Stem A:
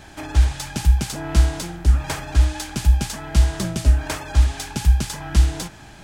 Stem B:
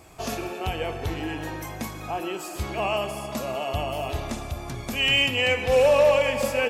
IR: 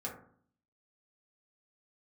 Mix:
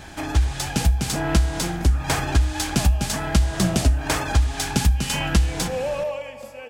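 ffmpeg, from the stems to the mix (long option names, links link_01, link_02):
-filter_complex "[0:a]dynaudnorm=framelen=660:gausssize=3:maxgain=11.5dB,volume=1.5dB,asplit=2[link_01][link_02];[link_02]volume=-9.5dB[link_03];[1:a]equalizer=frequency=710:width_type=o:width=0.77:gain=4,dynaudnorm=framelen=120:gausssize=11:maxgain=7dB,volume=-15.5dB[link_04];[2:a]atrim=start_sample=2205[link_05];[link_03][link_05]afir=irnorm=-1:irlink=0[link_06];[link_01][link_04][link_06]amix=inputs=3:normalize=0,acompressor=threshold=-14dB:ratio=10"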